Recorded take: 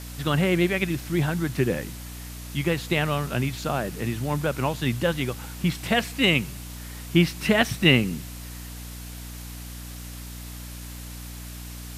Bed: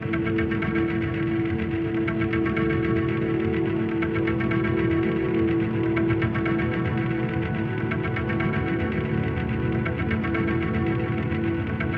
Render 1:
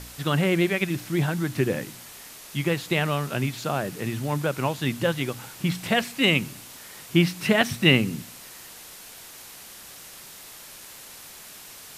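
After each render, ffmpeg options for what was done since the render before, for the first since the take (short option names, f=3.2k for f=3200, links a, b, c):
-af "bandreject=f=60:t=h:w=4,bandreject=f=120:t=h:w=4,bandreject=f=180:t=h:w=4,bandreject=f=240:t=h:w=4,bandreject=f=300:t=h:w=4"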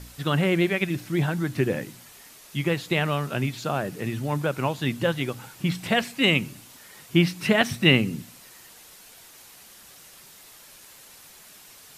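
-af "afftdn=nr=6:nf=-44"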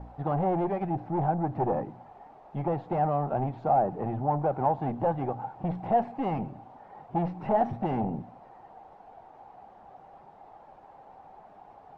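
-af "aeval=exprs='(tanh(22.4*val(0)+0.25)-tanh(0.25))/22.4':c=same,lowpass=f=790:t=q:w=8.4"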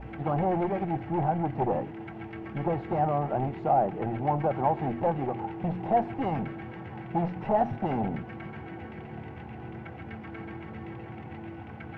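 -filter_complex "[1:a]volume=-16.5dB[a];[0:a][a]amix=inputs=2:normalize=0"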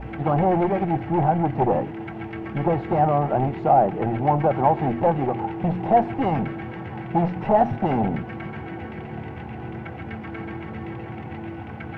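-af "volume=7dB"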